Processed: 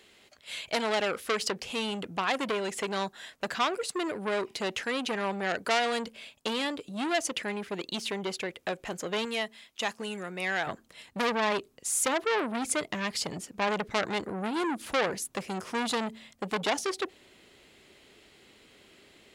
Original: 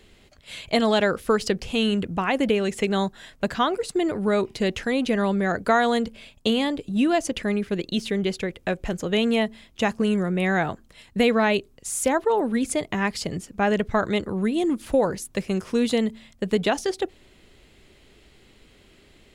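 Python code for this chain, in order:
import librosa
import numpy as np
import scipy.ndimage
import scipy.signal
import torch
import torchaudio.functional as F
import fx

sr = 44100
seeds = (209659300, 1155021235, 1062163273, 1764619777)

y = fx.highpass(x, sr, hz=fx.steps((0.0, 610.0), (9.25, 1400.0), (10.67, 310.0)), slope=6)
y = fx.transformer_sat(y, sr, knee_hz=3200.0)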